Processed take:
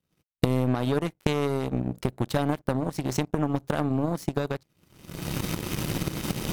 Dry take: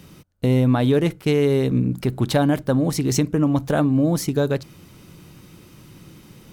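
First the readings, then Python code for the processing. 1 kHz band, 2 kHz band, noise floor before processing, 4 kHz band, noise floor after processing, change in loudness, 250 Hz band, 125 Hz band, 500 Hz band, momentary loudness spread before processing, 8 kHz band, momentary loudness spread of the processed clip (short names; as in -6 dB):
-2.5 dB, -4.0 dB, -48 dBFS, -4.0 dB, -78 dBFS, -8.0 dB, -7.5 dB, -7.0 dB, -7.5 dB, 5 LU, -6.0 dB, 6 LU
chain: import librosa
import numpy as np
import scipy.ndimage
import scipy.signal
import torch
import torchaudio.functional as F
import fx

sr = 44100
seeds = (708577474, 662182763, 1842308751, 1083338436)

y = fx.recorder_agc(x, sr, target_db=-10.5, rise_db_per_s=34.0, max_gain_db=30)
y = fx.power_curve(y, sr, exponent=2.0)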